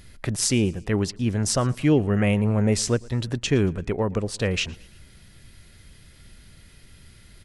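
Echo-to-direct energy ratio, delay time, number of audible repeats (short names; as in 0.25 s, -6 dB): -23.0 dB, 0.114 s, 2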